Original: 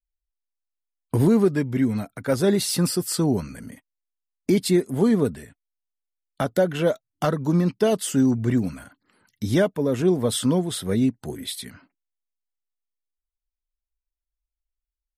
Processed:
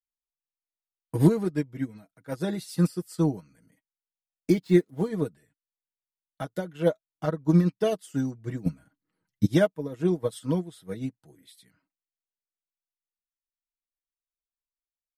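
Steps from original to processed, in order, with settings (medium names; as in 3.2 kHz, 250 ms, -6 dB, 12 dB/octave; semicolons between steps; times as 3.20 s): 4.52–5.07 s: median filter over 5 samples; 8.66–9.46 s: bass shelf 410 Hz +11.5 dB; comb 6.3 ms, depth 60%; 6.88–7.49 s: treble shelf 2.7 kHz -7 dB; upward expansion 2.5:1, over -28 dBFS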